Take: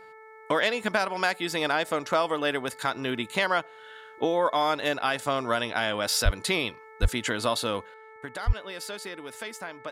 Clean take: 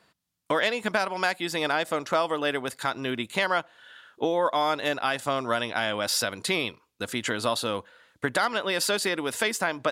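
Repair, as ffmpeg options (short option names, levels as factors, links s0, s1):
-filter_complex "[0:a]bandreject=f=438.8:t=h:w=4,bandreject=f=877.6:t=h:w=4,bandreject=f=1316.4:t=h:w=4,bandreject=f=1755.2:t=h:w=4,bandreject=f=2194:t=h:w=4,asplit=3[s0][s1][s2];[s0]afade=t=out:st=6.24:d=0.02[s3];[s1]highpass=f=140:w=0.5412,highpass=f=140:w=1.3066,afade=t=in:st=6.24:d=0.02,afade=t=out:st=6.36:d=0.02[s4];[s2]afade=t=in:st=6.36:d=0.02[s5];[s3][s4][s5]amix=inputs=3:normalize=0,asplit=3[s6][s7][s8];[s6]afade=t=out:st=7.01:d=0.02[s9];[s7]highpass=f=140:w=0.5412,highpass=f=140:w=1.3066,afade=t=in:st=7.01:d=0.02,afade=t=out:st=7.13:d=0.02[s10];[s8]afade=t=in:st=7.13:d=0.02[s11];[s9][s10][s11]amix=inputs=3:normalize=0,asplit=3[s12][s13][s14];[s12]afade=t=out:st=8.46:d=0.02[s15];[s13]highpass=f=140:w=0.5412,highpass=f=140:w=1.3066,afade=t=in:st=8.46:d=0.02,afade=t=out:st=8.58:d=0.02[s16];[s14]afade=t=in:st=8.58:d=0.02[s17];[s15][s16][s17]amix=inputs=3:normalize=0,asetnsamples=n=441:p=0,asendcmd='7.94 volume volume 11.5dB',volume=1"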